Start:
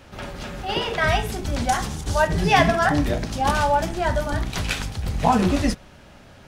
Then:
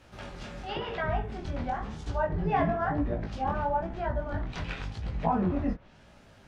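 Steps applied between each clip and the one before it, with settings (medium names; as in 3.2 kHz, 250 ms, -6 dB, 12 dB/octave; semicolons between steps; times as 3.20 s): low-pass that closes with the level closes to 1.3 kHz, closed at -18.5 dBFS; chorus 0.97 Hz, delay 17 ms, depth 7.7 ms; trim -5.5 dB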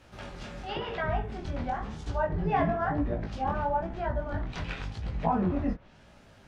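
no audible change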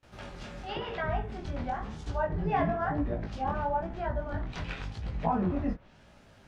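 gate with hold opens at -47 dBFS; trim -1.5 dB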